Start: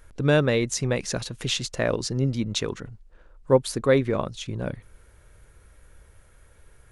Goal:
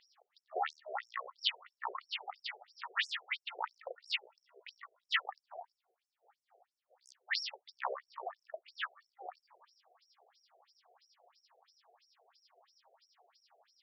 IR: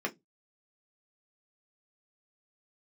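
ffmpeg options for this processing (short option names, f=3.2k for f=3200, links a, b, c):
-filter_complex "[0:a]lowshelf=f=100:g=11,asetrate=22050,aresample=44100,aeval=exprs='0.473*(cos(1*acos(clip(val(0)/0.473,-1,1)))-cos(1*PI/2))+0.0841*(cos(5*acos(clip(val(0)/0.473,-1,1)))-cos(5*PI/2))':c=same,asplit=2[a][b];[1:a]atrim=start_sample=2205,highshelf=f=2.6k:g=3[c];[b][c]afir=irnorm=-1:irlink=0,volume=-22.5dB[d];[a][d]amix=inputs=2:normalize=0,afftfilt=real='re*between(b*sr/1024,520*pow(7700/520,0.5+0.5*sin(2*PI*3*pts/sr))/1.41,520*pow(7700/520,0.5+0.5*sin(2*PI*3*pts/sr))*1.41)':imag='im*between(b*sr/1024,520*pow(7700/520,0.5+0.5*sin(2*PI*3*pts/sr))/1.41,520*pow(7700/520,0.5+0.5*sin(2*PI*3*pts/sr))*1.41)':win_size=1024:overlap=0.75,volume=-5.5dB"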